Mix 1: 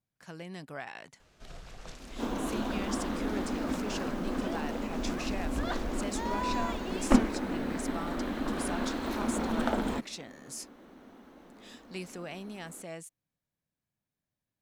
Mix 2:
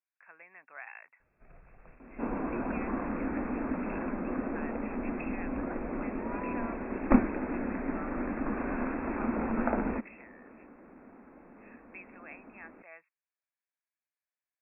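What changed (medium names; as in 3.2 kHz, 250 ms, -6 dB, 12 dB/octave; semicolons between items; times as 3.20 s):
speech: add high-pass 1.2 kHz 12 dB/octave; first sound -9.0 dB; master: add brick-wall FIR low-pass 2.7 kHz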